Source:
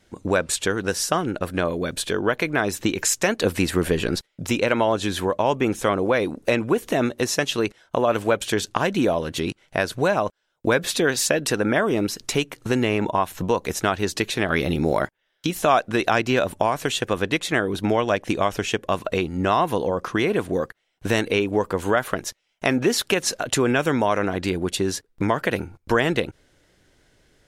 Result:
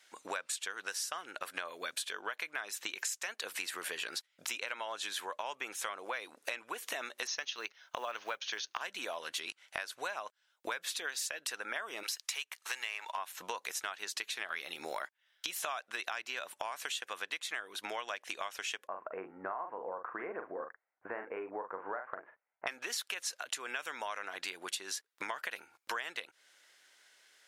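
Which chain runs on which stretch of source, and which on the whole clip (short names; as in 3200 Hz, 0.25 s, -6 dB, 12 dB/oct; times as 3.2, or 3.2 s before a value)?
7.27–8.81 brick-wall FIR low-pass 6700 Hz + companded quantiser 8-bit
12.03–13.17 HPF 840 Hz + sample leveller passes 1 + notch 1400 Hz, Q 11
18.87–22.67 Gaussian blur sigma 6.9 samples + doubler 42 ms -7 dB
whole clip: HPF 1200 Hz 12 dB/oct; compressor 6:1, threshold -37 dBFS; gain +1 dB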